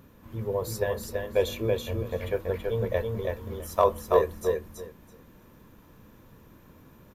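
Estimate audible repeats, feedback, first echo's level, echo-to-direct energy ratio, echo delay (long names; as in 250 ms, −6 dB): 3, 17%, −3.5 dB, −3.5 dB, 329 ms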